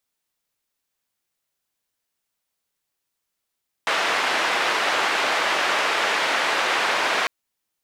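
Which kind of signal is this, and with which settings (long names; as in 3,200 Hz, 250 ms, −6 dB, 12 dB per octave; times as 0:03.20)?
band-limited noise 500–2,200 Hz, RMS −22 dBFS 3.40 s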